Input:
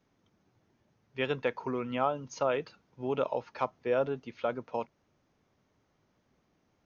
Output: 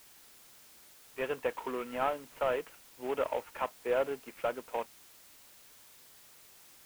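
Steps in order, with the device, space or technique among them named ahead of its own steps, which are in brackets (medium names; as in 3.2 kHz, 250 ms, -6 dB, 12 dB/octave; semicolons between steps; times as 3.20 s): army field radio (band-pass 350–3400 Hz; CVSD coder 16 kbps; white noise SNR 20 dB)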